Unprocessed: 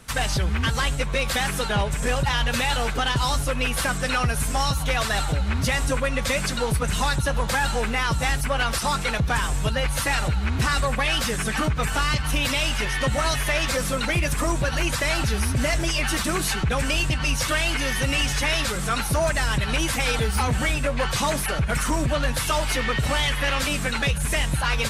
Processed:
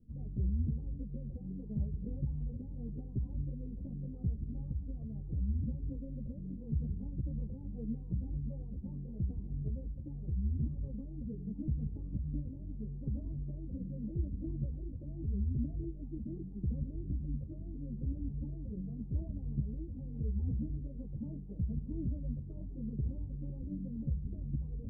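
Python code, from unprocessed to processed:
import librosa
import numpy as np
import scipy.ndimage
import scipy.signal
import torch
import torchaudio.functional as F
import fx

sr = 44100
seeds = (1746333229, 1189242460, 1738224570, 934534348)

y = scipy.signal.sosfilt(scipy.signal.cheby2(4, 70, 1400.0, 'lowpass', fs=sr, output='sos'), x)
y = fx.rider(y, sr, range_db=10, speed_s=2.0)
y = fx.ensemble(y, sr)
y = y * 10.0 ** (-7.0 / 20.0)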